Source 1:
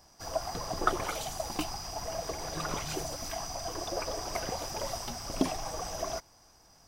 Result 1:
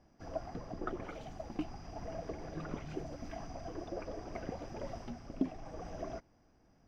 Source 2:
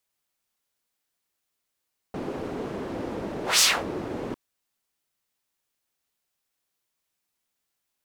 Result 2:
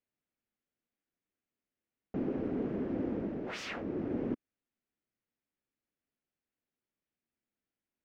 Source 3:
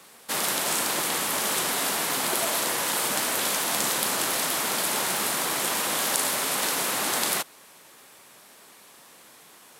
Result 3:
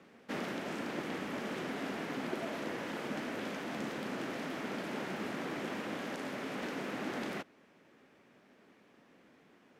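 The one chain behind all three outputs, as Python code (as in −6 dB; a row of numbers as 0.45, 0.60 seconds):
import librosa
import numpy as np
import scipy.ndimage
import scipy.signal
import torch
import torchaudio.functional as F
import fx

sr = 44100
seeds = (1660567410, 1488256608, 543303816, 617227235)

y = fx.graphic_eq_10(x, sr, hz=(250, 1000, 4000), db=(7, -8, -9))
y = fx.rider(y, sr, range_db=5, speed_s=0.5)
y = fx.air_absorb(y, sr, metres=240.0)
y = F.gain(torch.from_numpy(y), -6.0).numpy()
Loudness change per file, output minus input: −8.5, −10.5, −15.0 LU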